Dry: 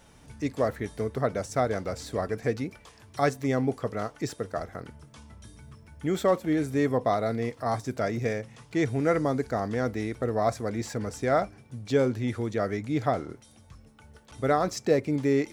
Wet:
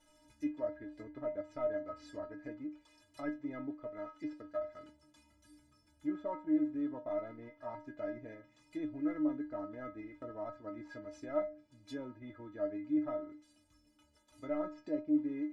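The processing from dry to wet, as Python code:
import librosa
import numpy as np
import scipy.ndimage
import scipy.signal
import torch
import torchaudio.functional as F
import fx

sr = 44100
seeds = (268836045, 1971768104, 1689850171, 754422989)

p1 = fx.cvsd(x, sr, bps=64000)
p2 = fx.level_steps(p1, sr, step_db=15)
p3 = p1 + F.gain(torch.from_numpy(p2), -2.0).numpy()
p4 = fx.env_lowpass_down(p3, sr, base_hz=1400.0, full_db=-23.0)
y = fx.stiff_resonator(p4, sr, f0_hz=300.0, decay_s=0.3, stiffness=0.008)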